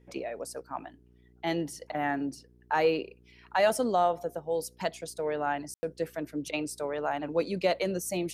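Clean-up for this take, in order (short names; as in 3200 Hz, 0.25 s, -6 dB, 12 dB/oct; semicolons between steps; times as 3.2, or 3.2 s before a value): de-hum 60.5 Hz, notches 7; room tone fill 5.74–5.83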